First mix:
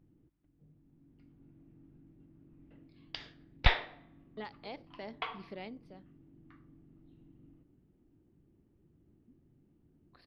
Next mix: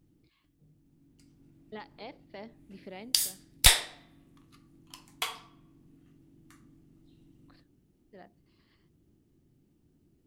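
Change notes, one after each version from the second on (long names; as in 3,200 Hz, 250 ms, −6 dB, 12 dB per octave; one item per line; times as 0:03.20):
speech: entry −2.65 s
background: remove Gaussian smoothing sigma 3.2 samples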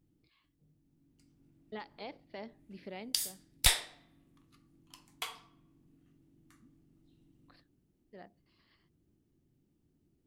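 background −6.5 dB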